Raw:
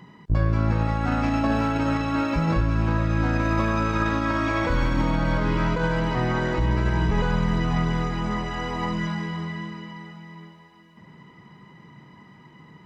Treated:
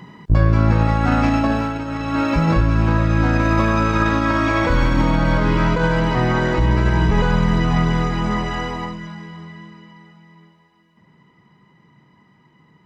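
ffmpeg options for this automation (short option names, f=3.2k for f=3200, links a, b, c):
-af "volume=17.5dB,afade=t=out:st=1.24:d=0.63:silence=0.266073,afade=t=in:st=1.87:d=0.42:silence=0.298538,afade=t=out:st=8.54:d=0.44:silence=0.266073"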